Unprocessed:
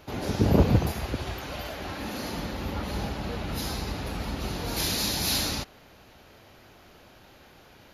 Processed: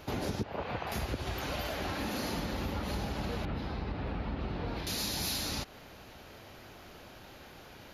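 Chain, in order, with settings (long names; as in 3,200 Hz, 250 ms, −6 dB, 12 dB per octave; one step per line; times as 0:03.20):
0:00.43–0:00.92: three-way crossover with the lows and the highs turned down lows −19 dB, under 590 Hz, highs −23 dB, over 3,500 Hz
downward compressor 10 to 1, threshold −33 dBFS, peak gain reduction 16 dB
0:03.45–0:04.87: high-frequency loss of the air 360 metres
level +2 dB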